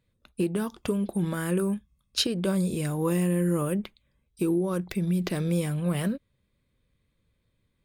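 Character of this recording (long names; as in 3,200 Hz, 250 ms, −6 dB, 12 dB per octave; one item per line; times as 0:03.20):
background noise floor −74 dBFS
spectral slope −6.0 dB per octave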